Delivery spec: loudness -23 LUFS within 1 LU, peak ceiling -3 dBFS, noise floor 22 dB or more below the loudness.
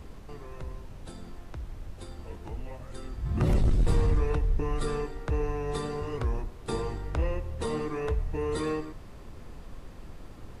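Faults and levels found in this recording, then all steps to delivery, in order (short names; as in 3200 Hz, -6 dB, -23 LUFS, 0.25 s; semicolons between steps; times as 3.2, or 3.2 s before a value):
noise floor -46 dBFS; noise floor target -54 dBFS; loudness -31.5 LUFS; peak -16.5 dBFS; loudness target -23.0 LUFS
-> noise print and reduce 8 dB; gain +8.5 dB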